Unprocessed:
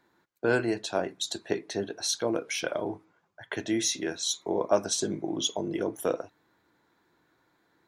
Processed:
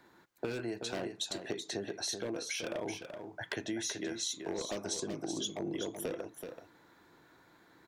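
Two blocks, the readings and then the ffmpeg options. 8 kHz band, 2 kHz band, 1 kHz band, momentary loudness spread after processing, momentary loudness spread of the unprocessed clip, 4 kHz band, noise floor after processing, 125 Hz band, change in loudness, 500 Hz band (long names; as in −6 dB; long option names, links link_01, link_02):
−7.0 dB, −7.5 dB, −10.5 dB, 7 LU, 8 LU, −6.5 dB, −63 dBFS, −7.0 dB, −8.0 dB, −9.5 dB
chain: -filter_complex "[0:a]acrossover=split=510|2200[link_01][link_02][link_03];[link_02]aeval=exprs='0.0282*(abs(mod(val(0)/0.0282+3,4)-2)-1)':channel_layout=same[link_04];[link_01][link_04][link_03]amix=inputs=3:normalize=0,acompressor=threshold=-42dB:ratio=6,aecho=1:1:380:0.447,volume=6dB"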